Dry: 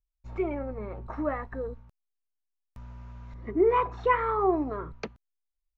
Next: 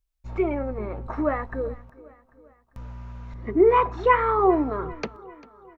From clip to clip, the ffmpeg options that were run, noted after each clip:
-af "aecho=1:1:396|792|1188|1584:0.0891|0.0472|0.025|0.0133,volume=5.5dB"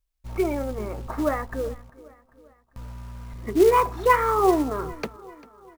-af "acrusher=bits=5:mode=log:mix=0:aa=0.000001"

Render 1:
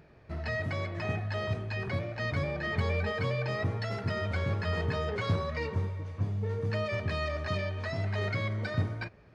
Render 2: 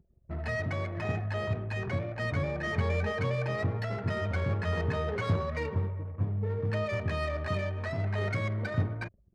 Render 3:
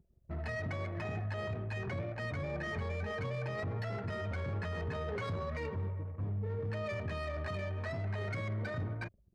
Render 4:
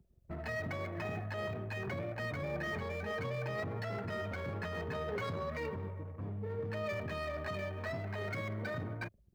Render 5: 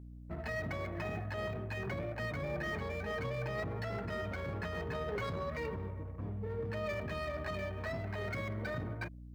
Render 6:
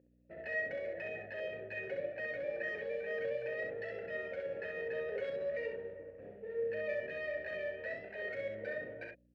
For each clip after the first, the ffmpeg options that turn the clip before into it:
-af "anlmdn=0.0158,adynamicsmooth=sensitivity=5.5:basefreq=2.2k,volume=1dB"
-af "alimiter=level_in=3.5dB:limit=-24dB:level=0:latency=1:release=12,volume=-3.5dB,volume=-3dB"
-filter_complex "[0:a]acrossover=split=130|2100[a][b][c];[a]acompressor=threshold=-49dB:ratio=6[d];[c]acrusher=bits=4:mode=log:mix=0:aa=0.000001[e];[d][b][e]amix=inputs=3:normalize=0,volume=1dB"
-af "aeval=exprs='val(0)+0.00398*(sin(2*PI*60*n/s)+sin(2*PI*2*60*n/s)/2+sin(2*PI*3*60*n/s)/3+sin(2*PI*4*60*n/s)/4+sin(2*PI*5*60*n/s)/5)':c=same"
-filter_complex "[0:a]asplit=3[a][b][c];[a]bandpass=f=530:t=q:w=8,volume=0dB[d];[b]bandpass=f=1.84k:t=q:w=8,volume=-6dB[e];[c]bandpass=f=2.48k:t=q:w=8,volume=-9dB[f];[d][e][f]amix=inputs=3:normalize=0,asplit=2[g][h];[h]aecho=0:1:37|65:0.398|0.631[i];[g][i]amix=inputs=2:normalize=0,volume=7.5dB"

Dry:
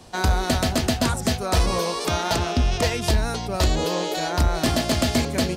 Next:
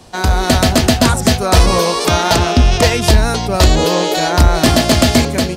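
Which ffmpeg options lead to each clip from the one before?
-af "dynaudnorm=f=110:g=7:m=5.5dB,volume=5dB"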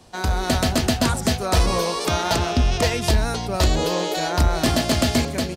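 -af "aecho=1:1:130:0.0794,volume=-8.5dB"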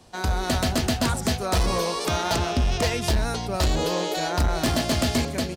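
-af "volume=14.5dB,asoftclip=hard,volume=-14.5dB,volume=-2.5dB"

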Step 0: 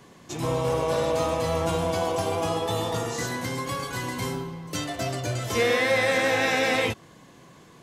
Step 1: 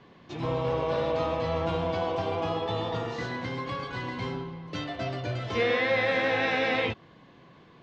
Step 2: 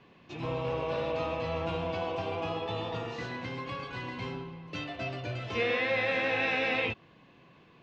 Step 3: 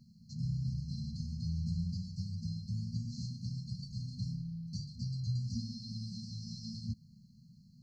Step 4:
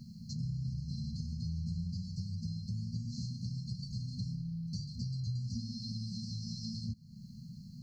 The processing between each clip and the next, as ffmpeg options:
-af "lowpass=f=4.1k:w=0.5412,lowpass=f=4.1k:w=1.3066,volume=-3dB"
-af "equalizer=f=2.6k:t=o:w=0.22:g=10,volume=-4.5dB"
-af "afftfilt=real='re*(1-between(b*sr/4096,240,4100))':imag='im*(1-between(b*sr/4096,240,4100))':win_size=4096:overlap=0.75,volume=4dB"
-af "acompressor=threshold=-52dB:ratio=2.5,volume=11dB"

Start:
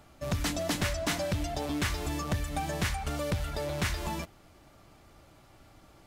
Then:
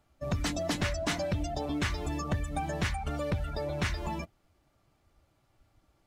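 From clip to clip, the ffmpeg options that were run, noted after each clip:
-af "afftdn=nr=14:nf=-40"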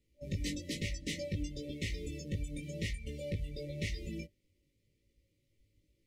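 -af "afftfilt=real='re*(1-between(b*sr/4096,590,1800))':imag='im*(1-between(b*sr/4096,590,1800))':win_size=4096:overlap=0.75,flanger=delay=18:depth=2.2:speed=0.97,volume=-2.5dB"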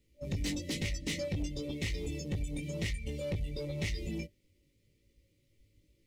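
-af "asoftclip=type=tanh:threshold=-33dB,volume=5dB"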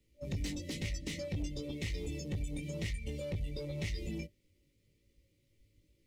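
-filter_complex "[0:a]acrossover=split=160[a][b];[b]acompressor=threshold=-36dB:ratio=6[c];[a][c]amix=inputs=2:normalize=0,volume=-1.5dB"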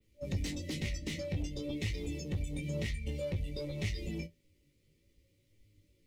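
-af "adynamicequalizer=threshold=0.00112:dfrequency=8100:dqfactor=0.75:tfrequency=8100:tqfactor=0.75:attack=5:release=100:ratio=0.375:range=2:mode=cutabove:tftype=bell,flanger=delay=9.4:depth=4.5:regen=56:speed=0.53:shape=triangular,volume=6dB"

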